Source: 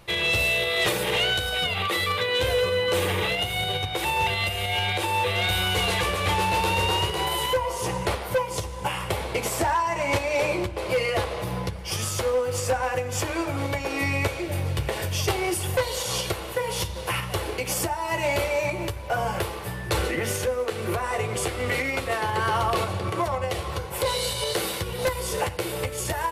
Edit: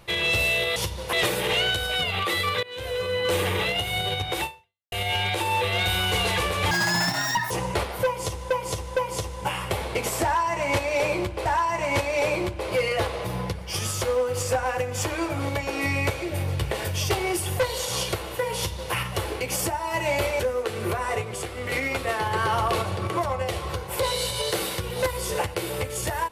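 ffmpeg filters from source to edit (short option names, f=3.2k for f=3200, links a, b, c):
-filter_complex "[0:a]asplit=13[a][b][c][d][e][f][g][h][i][j][k][l][m];[a]atrim=end=0.762[n];[b]atrim=start=16.738:end=17.112[o];[c]atrim=start=0.758:end=2.26,asetpts=PTS-STARTPTS,afade=t=out:st=1.498:d=0.004:c=hsin:silence=0.0891251[p];[d]atrim=start=2.26:end=4.55,asetpts=PTS-STARTPTS,afade=t=in:d=0.69:silence=0.0891251,afade=t=out:st=1.8:d=0.49:c=exp[q];[e]atrim=start=4.55:end=6.344,asetpts=PTS-STARTPTS,afade=t=in:d=0.004:c=hsin[r];[f]atrim=start=6.34:end=7.82,asetpts=PTS-STARTPTS,asetrate=82026,aresample=44100,atrim=end_sample=35090,asetpts=PTS-STARTPTS[s];[g]atrim=start=7.816:end=8.822[t];[h]atrim=start=8.358:end=8.822[u];[i]atrim=start=8.358:end=10.852[v];[j]atrim=start=9.628:end=18.572[w];[k]atrim=start=20.418:end=21.242[x];[l]atrim=start=21.238:end=21.742,asetpts=PTS-STARTPTS,volume=-5dB[y];[m]atrim=start=21.738[z];[n][o]acrossfade=d=0.004:c1=hsin:c2=hsin[aa];[p][q][r]concat=n=3:v=0:a=1[ab];[aa][ab]acrossfade=d=0.004:c1=hsin:c2=hsin[ac];[ac][s]acrossfade=d=0.004:c1=hsin:c2=hsin[ad];[ad][t]acrossfade=d=0.004:c1=hsin:c2=hsin[ae];[ae][u]acrossfade=d=0.004:c1=hsin:c2=hsin[af];[af][v]acrossfade=d=0.004:c1=hsin:c2=hsin[ag];[ag][w]acrossfade=d=0.004:c1=hsin:c2=hsin[ah];[ah][x]acrossfade=d=0.004:c1=hsin:c2=hsin[ai];[ai][y]acrossfade=d=0.004:c1=hsin:c2=hsin[aj];[aj][z]acrossfade=d=0.004:c1=hsin:c2=hsin"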